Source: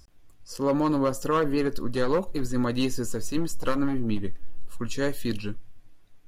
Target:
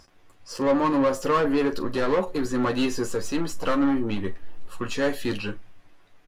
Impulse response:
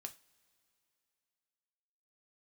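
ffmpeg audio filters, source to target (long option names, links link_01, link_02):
-filter_complex "[0:a]asplit=2[link_01][link_02];[link_02]highpass=frequency=720:poles=1,volume=19dB,asoftclip=type=tanh:threshold=-14.5dB[link_03];[link_01][link_03]amix=inputs=2:normalize=0,lowpass=frequency=1900:poles=1,volume=-6dB,aecho=1:1:11|43:0.501|0.178,volume=-1.5dB"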